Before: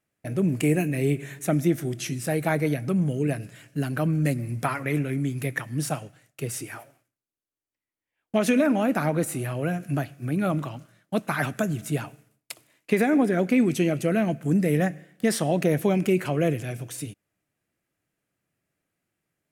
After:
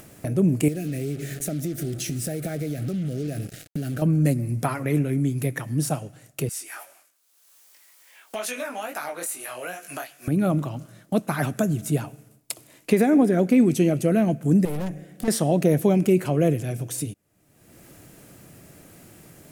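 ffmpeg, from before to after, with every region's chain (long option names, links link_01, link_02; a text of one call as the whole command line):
ffmpeg -i in.wav -filter_complex "[0:a]asettb=1/sr,asplit=3[link_01][link_02][link_03];[link_01]atrim=end=0.684[link_04];[link_02]atrim=start=0.68:end=4.02,asetpts=PTS-STARTPTS,afade=type=in:duration=0.004:curve=qsin,afade=type=out:start_time=3.336:duration=0.004:curve=qsin,acompressor=threshold=-29dB:ratio=6:attack=3.2:release=140:knee=1:detection=peak,acrusher=bits=6:mix=0:aa=0.5,asuperstop=centerf=970:order=4:qfactor=1.9[link_05];[link_03]atrim=start=4.016[link_06];[link_04][link_05]acrossfade=duration=0.004:curve1=hsin:curve2=qsin[link_07];[link_07][link_06]acrossfade=duration=0.004:curve1=qsin:curve2=hsin,asettb=1/sr,asplit=3[link_08][link_09][link_10];[link_08]atrim=end=6.494[link_11];[link_09]atrim=start=6.49:end=10.28,asetpts=PTS-STARTPTS,afade=type=in:duration=0.004:curve=qsin,afade=type=out:start_time=3.786:duration=0.004:curve=qsin,highpass=1100,flanger=delay=19.5:depth=4.7:speed=2.4[link_12];[link_10]atrim=start=10.276[link_13];[link_11][link_12]acrossfade=duration=0.004:curve1=hsin:curve2=qsin[link_14];[link_14][link_13]acrossfade=duration=0.004:curve1=qsin:curve2=hsin,asettb=1/sr,asplit=3[link_15][link_16][link_17];[link_15]atrim=end=14.654[link_18];[link_16]atrim=start=14.65:end=15.28,asetpts=PTS-STARTPTS,afade=type=in:duration=0.004:curve=qsin,afade=type=out:start_time=0.626:duration=0.004:curve=qsin,bandreject=frequency=1800:width=19,aeval=exprs='(tanh(31.6*val(0)+0.45)-tanh(0.45))/31.6':channel_layout=same[link_19];[link_17]atrim=start=15.276[link_20];[link_18][link_19]acrossfade=duration=0.004:curve1=hsin:curve2=qsin[link_21];[link_21][link_20]acrossfade=duration=0.004:curve1=qsin:curve2=hsin,equalizer=frequency=2000:width=0.6:gain=-8,acompressor=mode=upward:threshold=-28dB:ratio=2.5,volume=4dB" out.wav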